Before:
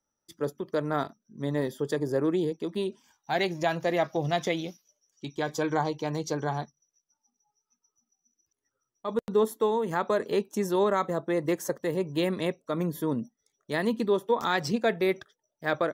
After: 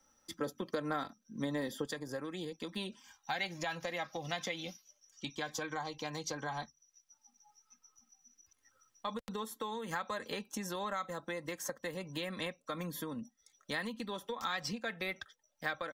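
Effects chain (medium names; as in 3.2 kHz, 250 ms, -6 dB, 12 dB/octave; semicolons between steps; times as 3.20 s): treble shelf 7.6 kHz -6.5 dB; comb 3.8 ms, depth 51%; compression, threshold -30 dBFS, peak gain reduction 12 dB; peaking EQ 340 Hz -6 dB 2.6 oct, from 1.85 s -14.5 dB; three bands compressed up and down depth 40%; trim +3.5 dB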